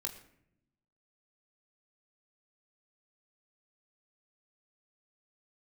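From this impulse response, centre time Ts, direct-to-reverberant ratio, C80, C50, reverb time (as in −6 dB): 16 ms, 2.0 dB, 13.0 dB, 11.0 dB, 0.70 s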